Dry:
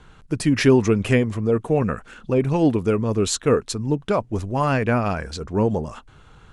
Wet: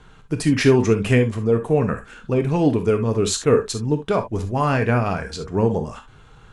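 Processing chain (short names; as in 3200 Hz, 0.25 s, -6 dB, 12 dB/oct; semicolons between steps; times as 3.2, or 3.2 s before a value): non-linear reverb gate 90 ms flat, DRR 6.5 dB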